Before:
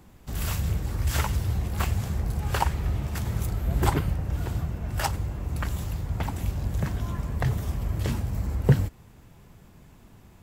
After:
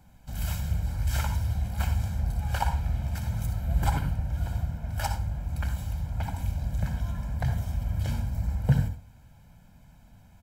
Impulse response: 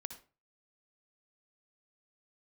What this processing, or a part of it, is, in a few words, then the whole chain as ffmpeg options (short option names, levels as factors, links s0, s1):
microphone above a desk: -filter_complex "[0:a]aecho=1:1:1.3:0.78[s0];[1:a]atrim=start_sample=2205[s1];[s0][s1]afir=irnorm=-1:irlink=0,volume=0.668"